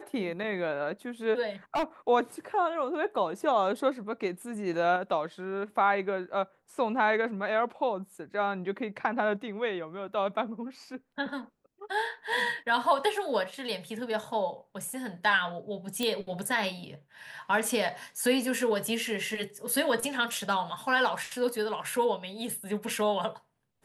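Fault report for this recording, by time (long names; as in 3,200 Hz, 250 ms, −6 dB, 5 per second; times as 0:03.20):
0:01.74–0:01.84: clipping −24.5 dBFS
0:16.03: click −16 dBFS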